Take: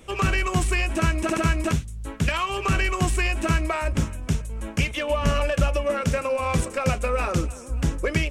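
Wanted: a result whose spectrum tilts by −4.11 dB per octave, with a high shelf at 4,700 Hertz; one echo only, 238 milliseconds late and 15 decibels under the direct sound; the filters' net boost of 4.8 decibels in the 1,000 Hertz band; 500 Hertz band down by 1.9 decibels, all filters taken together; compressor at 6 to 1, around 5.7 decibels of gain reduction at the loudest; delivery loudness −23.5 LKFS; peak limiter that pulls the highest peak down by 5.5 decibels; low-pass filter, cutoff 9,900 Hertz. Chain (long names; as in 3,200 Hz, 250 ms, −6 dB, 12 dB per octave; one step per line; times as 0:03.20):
low-pass filter 9,900 Hz
parametric band 500 Hz −4.5 dB
parametric band 1,000 Hz +6.5 dB
high-shelf EQ 4,700 Hz +8 dB
downward compressor 6 to 1, threshold −22 dBFS
brickwall limiter −17.5 dBFS
single-tap delay 238 ms −15 dB
level +4.5 dB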